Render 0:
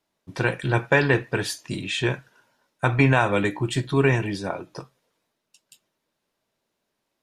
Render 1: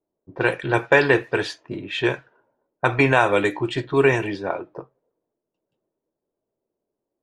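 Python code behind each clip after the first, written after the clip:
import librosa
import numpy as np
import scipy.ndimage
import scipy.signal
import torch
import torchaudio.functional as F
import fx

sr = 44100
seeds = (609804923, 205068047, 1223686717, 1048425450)

y = fx.low_shelf_res(x, sr, hz=280.0, db=-6.5, q=1.5)
y = fx.env_lowpass(y, sr, base_hz=440.0, full_db=-19.0)
y = y * 10.0 ** (3.0 / 20.0)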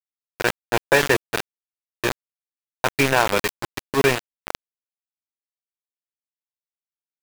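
y = np.where(np.abs(x) >= 10.0 ** (-15.5 / 20.0), x, 0.0)
y = fx.sustainer(y, sr, db_per_s=140.0)
y = y * 10.0 ** (-1.0 / 20.0)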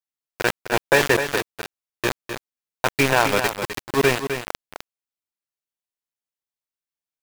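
y = x + 10.0 ** (-8.5 / 20.0) * np.pad(x, (int(256 * sr / 1000.0), 0))[:len(x)]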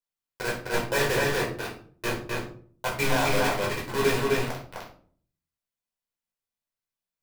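y = np.clip(x, -10.0 ** (-19.5 / 20.0), 10.0 ** (-19.5 / 20.0))
y = fx.room_shoebox(y, sr, seeds[0], volume_m3=460.0, walls='furnished', distance_m=4.9)
y = y * 10.0 ** (-6.5 / 20.0)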